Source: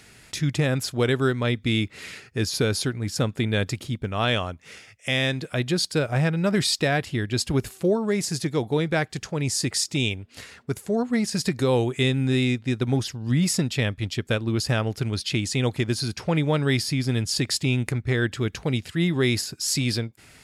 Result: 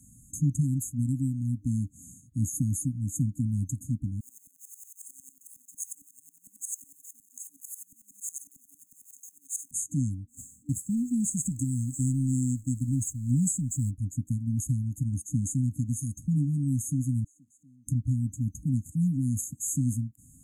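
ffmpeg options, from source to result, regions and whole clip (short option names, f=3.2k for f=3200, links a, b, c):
-filter_complex "[0:a]asettb=1/sr,asplit=3[a][b][c];[a]atrim=end=4.204[d];[b]atrim=start=4.2:end=9.71,asetpts=PTS-STARTPTS,afade=t=in:d=0.004:c=qsin,afade=t=out:st=5.506:d=0.004:c=qsin,aeval=exprs='val(0)+0.5*0.0299*sgn(val(0))':c=same,highpass=f=730:w=0.5412,highpass=f=730:w=1.3066,aeval=exprs='val(0)*pow(10,-18*if(lt(mod(-11*n/s,1),2*abs(-11)/1000),1-mod(-11*n/s,1)/(2*abs(-11)/1000),(mod(-11*n/s,1)-2*abs(-11)/1000)/(1-2*abs(-11)/1000))/20)':c=same[e];[c]atrim=start=9.706[f];[d][e]acrossfade=d=0.004:c1=hsin:c2=qsin[g];[g][f]acrossfade=d=0.004:c1=qsin:c2=hsin,asettb=1/sr,asplit=3[h][i][j];[h]atrim=end=10.274[k];[i]atrim=start=10.27:end=13.91,asetpts=PTS-STARTPTS,afade=t=in:d=0.004:c=qsin,afade=t=out:st=3.636:d=0.004:c=qsin,aeval=exprs='val(0)+0.5*0.0126*sgn(val(0))':c=same,agate=range=-33dB:threshold=-32dB:ratio=3:release=100:detection=peak,equalizer=f=7.8k:w=3.9:g=13.5[l];[j]atrim=start=13.906[m];[k][l]acrossfade=d=0.004:c1=hsin:c2=qsin[n];[n][m]acrossfade=d=0.004:c1=qsin:c2=hsin,asettb=1/sr,asplit=3[o][p][q];[o]atrim=end=17.244[r];[p]atrim=start=17.24:end=17.87,asetpts=PTS-STARTPTS,afade=t=in:d=0.004:c=qsin,afade=t=out:st=0.626:d=0.004:c=qsin,aeval=exprs='val(0)+0.5*0.0251*sgn(val(0))':c=same,bandpass=f=1.3k:t=q:w=7[s];[q]atrim=start=17.866[t];[r][s]acrossfade=d=0.004:c1=hsin:c2=qsin[u];[u][t]acrossfade=d=0.004:c1=qsin:c2=hsin,afftfilt=real='re*(1-between(b*sr/4096,300,6300))':imag='im*(1-between(b*sr/4096,300,6300))':win_size=4096:overlap=0.75,adynamicequalizer=threshold=0.02:dfrequency=200:dqfactor=0.7:tfrequency=200:tqfactor=0.7:attack=5:release=100:ratio=0.375:range=3:mode=cutabove:tftype=bell,acrossover=split=200[v][w];[w]acompressor=threshold=-28dB:ratio=6[x];[v][x]amix=inputs=2:normalize=0"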